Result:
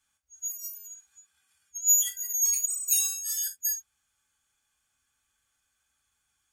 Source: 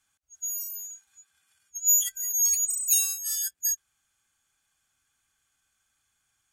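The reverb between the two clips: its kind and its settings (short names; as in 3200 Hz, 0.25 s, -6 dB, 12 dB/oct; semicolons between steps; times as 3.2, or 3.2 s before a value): non-linear reverb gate 90 ms falling, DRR 2 dB; gain -3.5 dB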